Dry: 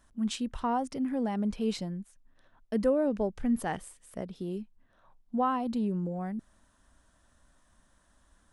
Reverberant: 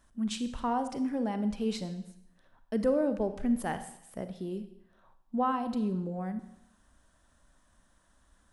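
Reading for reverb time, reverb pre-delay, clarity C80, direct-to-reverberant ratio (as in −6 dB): 0.75 s, 34 ms, 13.5 dB, 10.0 dB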